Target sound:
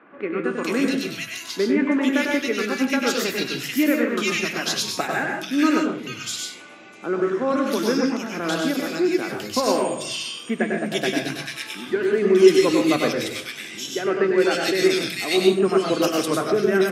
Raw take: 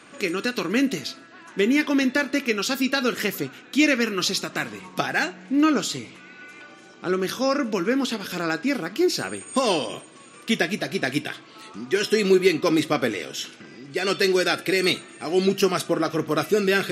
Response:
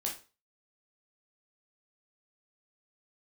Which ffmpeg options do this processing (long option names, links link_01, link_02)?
-filter_complex "[0:a]equalizer=frequency=4500:width=4.6:gain=-3,acrossover=split=170|2000[link_01][link_02][link_03];[link_01]adelay=140[link_04];[link_03]adelay=440[link_05];[link_04][link_02][link_05]amix=inputs=3:normalize=0,asplit=2[link_06][link_07];[1:a]atrim=start_sample=2205,adelay=98[link_08];[link_07][link_08]afir=irnorm=-1:irlink=0,volume=-3.5dB[link_09];[link_06][link_09]amix=inputs=2:normalize=0"